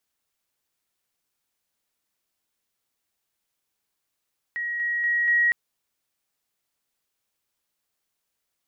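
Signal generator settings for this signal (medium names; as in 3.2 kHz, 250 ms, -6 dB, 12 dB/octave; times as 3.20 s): level ladder 1.9 kHz -26 dBFS, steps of 3 dB, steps 4, 0.24 s 0.00 s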